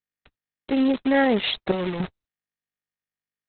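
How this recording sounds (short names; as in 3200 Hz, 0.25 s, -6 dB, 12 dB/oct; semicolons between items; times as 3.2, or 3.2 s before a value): random-step tremolo 3.5 Hz, depth 95%; a quantiser's noise floor 6-bit, dither none; Opus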